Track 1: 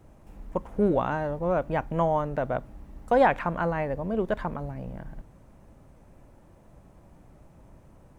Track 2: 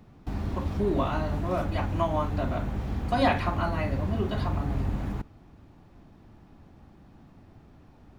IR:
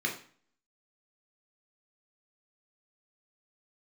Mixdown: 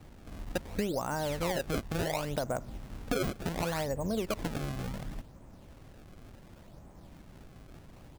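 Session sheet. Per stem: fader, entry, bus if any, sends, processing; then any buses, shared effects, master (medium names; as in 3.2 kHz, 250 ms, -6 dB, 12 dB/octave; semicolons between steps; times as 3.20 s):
0.0 dB, 0.00 s, no send, none
-5.0 dB, 0.4 ms, no send, compression 2:1, threshold -44 dBFS, peak gain reduction 14 dB; peak limiter -32.5 dBFS, peak gain reduction 8.5 dB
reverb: none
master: decimation with a swept rate 27×, swing 160% 0.69 Hz; compression 16:1, threshold -28 dBFS, peak gain reduction 14 dB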